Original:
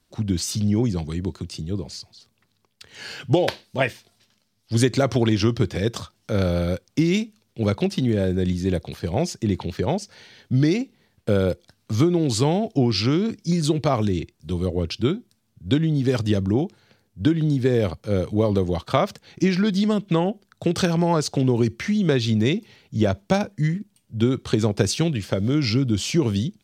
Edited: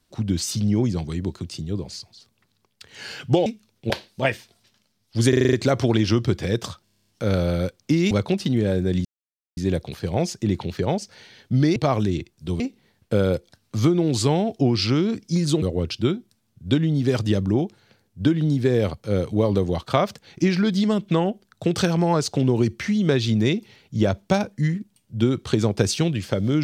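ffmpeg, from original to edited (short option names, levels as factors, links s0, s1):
-filter_complex "[0:a]asplit=22[s0][s1][s2][s3][s4][s5][s6][s7][s8][s9][s10][s11][s12][s13][s14][s15][s16][s17][s18][s19][s20][s21];[s0]atrim=end=3.462[s22];[s1]atrim=start=7.188:end=7.632[s23];[s2]atrim=start=3.458:end=4.892[s24];[s3]atrim=start=4.848:end=4.892[s25];[s4]atrim=start=4.848:end=4.892[s26];[s5]atrim=start=4.848:end=4.892[s27];[s6]atrim=start=4.848:end=4.892[s28];[s7]atrim=start=4.848:end=4.892[s29];[s8]atrim=start=4.848:end=6.192[s30];[s9]atrim=start=6.158:end=6.192[s31];[s10]atrim=start=6.158:end=6.192[s32];[s11]atrim=start=6.158:end=6.192[s33];[s12]atrim=start=6.158:end=6.192[s34];[s13]atrim=start=6.158:end=6.192[s35];[s14]atrim=start=6.158:end=6.192[s36];[s15]atrim=start=6.158:end=6.192[s37];[s16]atrim=start=6.158:end=7.192[s38];[s17]atrim=start=7.628:end=8.57,asetpts=PTS-STARTPTS,afade=t=out:st=0.938:d=0.004:c=hsin,apad=pad_dur=0.52[s39];[s18]atrim=start=8.57:end=10.762,asetpts=PTS-STARTPTS,afade=t=in:d=0.004:c=hsin[s40];[s19]atrim=start=13.778:end=14.622[s41];[s20]atrim=start=10.758:end=13.782[s42];[s21]atrim=start=14.618[s43];[s22][s23]acrossfade=d=0.004:c1=hsin:c2=hsin[s44];[s44][s24]acrossfade=d=0.004:c1=hsin:c2=hsin[s45];[s45][s25]acrossfade=d=0.004:c1=hsin:c2=hsin[s46];[s46][s26]acrossfade=d=0.004:c1=hsin:c2=hsin[s47];[s47][s27]acrossfade=d=0.004:c1=hsin:c2=hsin[s48];[s48][s28]acrossfade=d=0.004:c1=hsin:c2=hsin[s49];[s49][s29]acrossfade=d=0.004:c1=hsin:c2=hsin[s50];[s50][s30]acrossfade=d=0.004:c1=hsin:c2=hsin[s51];[s51][s31]acrossfade=d=0.004:c1=hsin:c2=hsin[s52];[s52][s32]acrossfade=d=0.004:c1=hsin:c2=hsin[s53];[s53][s33]acrossfade=d=0.004:c1=hsin:c2=hsin[s54];[s54][s34]acrossfade=d=0.004:c1=hsin:c2=hsin[s55];[s55][s35]acrossfade=d=0.004:c1=hsin:c2=hsin[s56];[s56][s36]acrossfade=d=0.004:c1=hsin:c2=hsin[s57];[s57][s37]acrossfade=d=0.004:c1=hsin:c2=hsin[s58];[s58][s38]acrossfade=d=0.004:c1=hsin:c2=hsin[s59];[s39][s40]concat=n=2:v=0:a=1[s60];[s59][s60]acrossfade=d=0.004:c1=hsin:c2=hsin[s61];[s61][s41]acrossfade=d=0.004:c1=hsin:c2=hsin[s62];[s62][s42]acrossfade=d=0.004:c1=hsin:c2=hsin[s63];[s63][s43]acrossfade=d=0.004:c1=hsin:c2=hsin"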